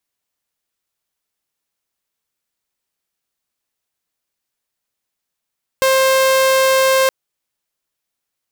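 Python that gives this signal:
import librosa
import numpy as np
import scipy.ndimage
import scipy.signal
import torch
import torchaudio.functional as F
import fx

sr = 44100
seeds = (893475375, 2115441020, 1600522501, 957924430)

y = 10.0 ** (-8.5 / 20.0) * (2.0 * np.mod(529.0 * (np.arange(round(1.27 * sr)) / sr), 1.0) - 1.0)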